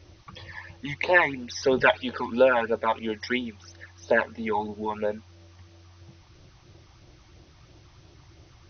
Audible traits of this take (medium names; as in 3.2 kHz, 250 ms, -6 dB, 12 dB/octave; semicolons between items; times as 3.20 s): phasing stages 12, 3 Hz, lowest notch 440–2000 Hz; a quantiser's noise floor 10-bit, dither triangular; AC-3